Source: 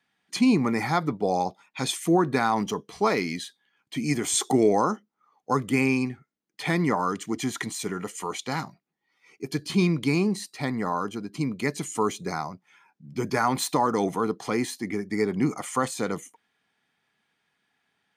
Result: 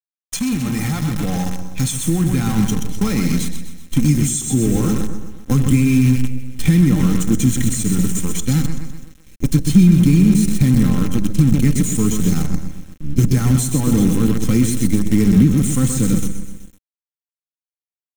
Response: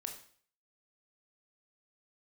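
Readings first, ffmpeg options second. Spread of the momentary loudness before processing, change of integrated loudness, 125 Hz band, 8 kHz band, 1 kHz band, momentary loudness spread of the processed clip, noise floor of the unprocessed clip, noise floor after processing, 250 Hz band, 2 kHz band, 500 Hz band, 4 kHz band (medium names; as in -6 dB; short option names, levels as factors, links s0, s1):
11 LU, +9.5 dB, +17.5 dB, +10.0 dB, -7.0 dB, 12 LU, -78 dBFS, under -85 dBFS, +11.5 dB, -0.5 dB, -1.5 dB, +3.5 dB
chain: -filter_complex "[0:a]highpass=f=92:w=0.5412,highpass=f=92:w=1.3066,aecho=1:1:126|252|378|504|630|756:0.447|0.219|0.107|0.0526|0.0258|0.0126,asplit=2[s0][s1];[1:a]atrim=start_sample=2205[s2];[s1][s2]afir=irnorm=-1:irlink=0,volume=0.447[s3];[s0][s3]amix=inputs=2:normalize=0,acontrast=81,equalizer=f=125:t=o:w=1:g=4,equalizer=f=250:t=o:w=1:g=-10,equalizer=f=500:t=o:w=1:g=-7,equalizer=f=1000:t=o:w=1:g=-12,equalizer=f=2000:t=o:w=1:g=-5,equalizer=f=4000:t=o:w=1:g=-4,equalizer=f=8000:t=o:w=1:g=6,acrusher=bits=5:dc=4:mix=0:aa=0.000001,bandreject=f=4700:w=6.4,acompressor=threshold=0.0631:ratio=4,asubboost=boost=11.5:cutoff=220,aecho=1:1:3.8:0.49,volume=1.19"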